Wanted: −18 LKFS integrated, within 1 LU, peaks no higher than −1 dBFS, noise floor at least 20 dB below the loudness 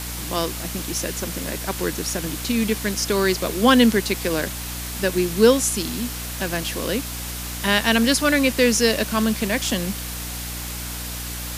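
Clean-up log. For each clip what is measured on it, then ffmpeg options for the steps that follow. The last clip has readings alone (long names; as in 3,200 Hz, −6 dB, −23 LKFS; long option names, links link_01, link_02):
mains hum 60 Hz; hum harmonics up to 300 Hz; level of the hum −32 dBFS; background noise floor −31 dBFS; target noise floor −42 dBFS; integrated loudness −21.5 LKFS; sample peak −1.5 dBFS; target loudness −18.0 LKFS
→ -af "bandreject=frequency=60:width_type=h:width=6,bandreject=frequency=120:width_type=h:width=6,bandreject=frequency=180:width_type=h:width=6,bandreject=frequency=240:width_type=h:width=6,bandreject=frequency=300:width_type=h:width=6"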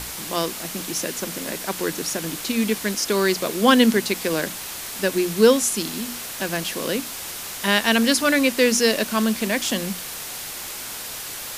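mains hum none found; background noise floor −33 dBFS; target noise floor −42 dBFS
→ -af "afftdn=noise_reduction=9:noise_floor=-33"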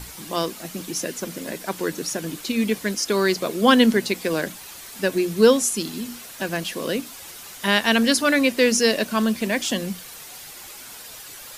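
background noise floor −40 dBFS; target noise floor −42 dBFS
→ -af "afftdn=noise_reduction=6:noise_floor=-40"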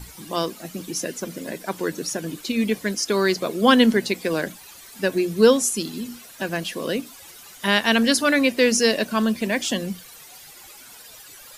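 background noise floor −45 dBFS; integrated loudness −22.0 LKFS; sample peak −2.0 dBFS; target loudness −18.0 LKFS
→ -af "volume=4dB,alimiter=limit=-1dB:level=0:latency=1"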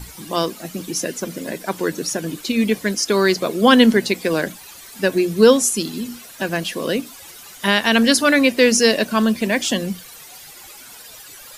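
integrated loudness −18.0 LKFS; sample peak −1.0 dBFS; background noise floor −41 dBFS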